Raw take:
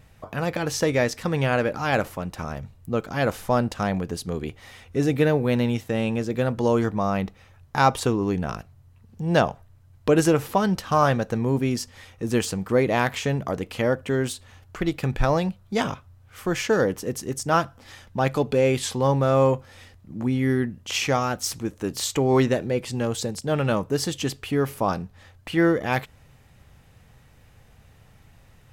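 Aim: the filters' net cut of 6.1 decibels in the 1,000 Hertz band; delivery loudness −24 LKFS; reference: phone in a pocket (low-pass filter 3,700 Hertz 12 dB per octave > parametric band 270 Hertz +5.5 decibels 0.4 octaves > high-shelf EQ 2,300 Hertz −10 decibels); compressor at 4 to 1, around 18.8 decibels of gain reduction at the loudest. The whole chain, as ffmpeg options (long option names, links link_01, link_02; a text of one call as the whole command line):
ffmpeg -i in.wav -af "equalizer=frequency=1000:width_type=o:gain=-6.5,acompressor=threshold=-39dB:ratio=4,lowpass=3700,equalizer=frequency=270:width_type=o:width=0.4:gain=5.5,highshelf=frequency=2300:gain=-10,volume=16dB" out.wav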